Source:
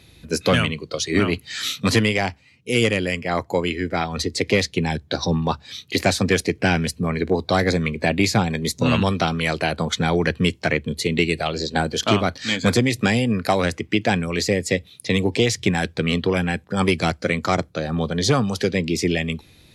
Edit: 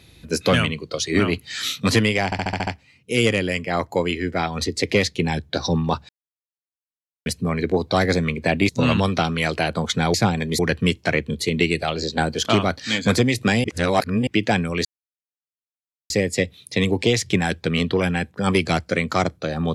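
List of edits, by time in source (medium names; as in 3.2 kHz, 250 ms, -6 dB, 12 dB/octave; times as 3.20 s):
2.25 s: stutter 0.07 s, 7 plays
5.67–6.84 s: mute
8.27–8.72 s: move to 10.17 s
13.22–13.85 s: reverse
14.43 s: insert silence 1.25 s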